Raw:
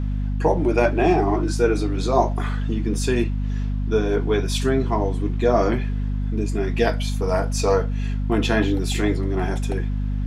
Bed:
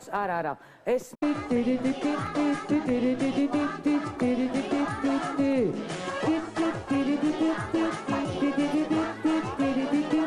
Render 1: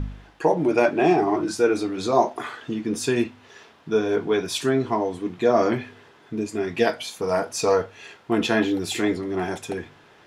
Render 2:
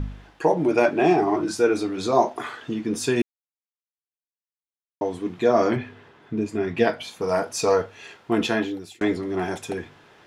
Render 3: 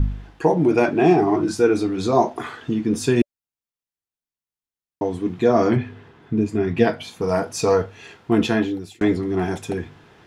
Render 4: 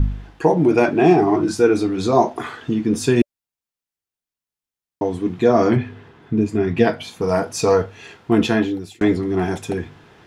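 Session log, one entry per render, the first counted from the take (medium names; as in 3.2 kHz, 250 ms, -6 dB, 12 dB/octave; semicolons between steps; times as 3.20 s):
de-hum 50 Hz, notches 5
3.22–5.01 s: mute; 5.76–7.21 s: tone controls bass +4 dB, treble -8 dB; 8.40–9.01 s: fade out
bass shelf 260 Hz +10.5 dB; band-stop 580 Hz, Q 14
trim +2 dB; peak limiter -2 dBFS, peak gain reduction 1.5 dB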